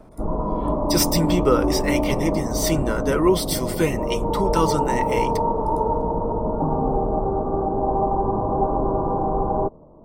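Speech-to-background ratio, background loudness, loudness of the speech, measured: 0.0 dB, -23.5 LUFS, -23.5 LUFS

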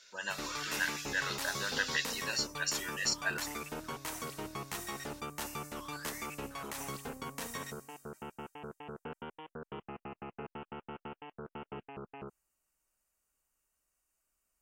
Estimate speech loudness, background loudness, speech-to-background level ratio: -35.0 LUFS, -42.5 LUFS, 7.5 dB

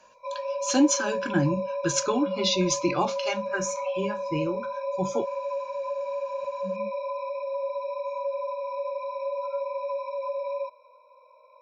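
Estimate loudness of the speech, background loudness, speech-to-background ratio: -27.5 LUFS, -31.5 LUFS, 4.0 dB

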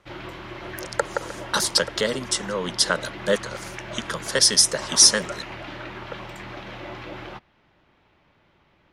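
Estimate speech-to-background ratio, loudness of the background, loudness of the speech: 15.5 dB, -36.0 LUFS, -20.5 LUFS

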